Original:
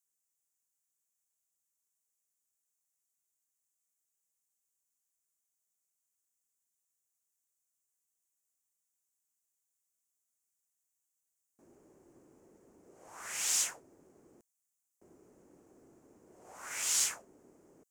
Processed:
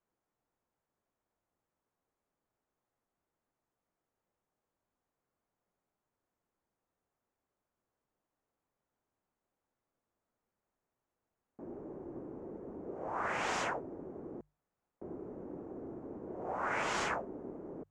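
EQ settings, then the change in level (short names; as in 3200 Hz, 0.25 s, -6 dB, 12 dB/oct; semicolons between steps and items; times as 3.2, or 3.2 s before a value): LPF 1000 Hz 12 dB/oct; notches 50/100/150 Hz; +17.5 dB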